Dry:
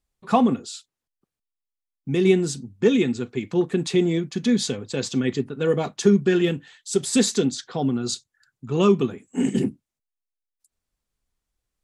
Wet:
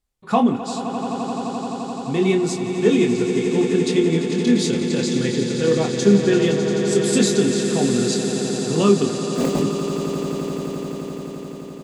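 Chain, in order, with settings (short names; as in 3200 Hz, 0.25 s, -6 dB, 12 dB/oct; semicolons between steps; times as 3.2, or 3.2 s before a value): 9.08–9.6 self-modulated delay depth 0.92 ms; doubler 25 ms -6 dB; swelling echo 86 ms, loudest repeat 8, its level -12 dB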